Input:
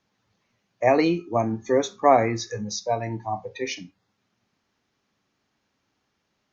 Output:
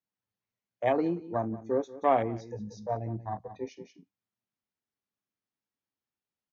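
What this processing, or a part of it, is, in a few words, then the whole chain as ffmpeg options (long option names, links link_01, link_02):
ducked delay: -filter_complex "[0:a]asettb=1/sr,asplit=3[link_01][link_02][link_03];[link_01]atrim=end=2.894[link_04];[link_02]atrim=start=2.89:end=3.73,asetpts=PTS-STARTPTS,afade=type=in:duration=0.004:curve=qsin,afade=type=out:start_time=0.836:duration=0.004:curve=qsin,bass=frequency=250:gain=5,treble=frequency=4000:gain=3[link_05];[link_03]atrim=start=3.726[link_06];[link_04][link_05]acrossfade=duration=0.004:curve1=hsin:curve2=qsin[link_07];[link_07][link_06]acrossfade=duration=0.004:curve1=qsin:curve2=hsin,afwtdn=0.0447,asplit=3[link_08][link_09][link_10];[link_09]adelay=181,volume=-5.5dB[link_11];[link_10]apad=whole_len=295650[link_12];[link_11][link_12]sidechaincompress=threshold=-37dB:ratio=6:attack=16:release=264[link_13];[link_08][link_13]amix=inputs=2:normalize=0,volume=-7.5dB"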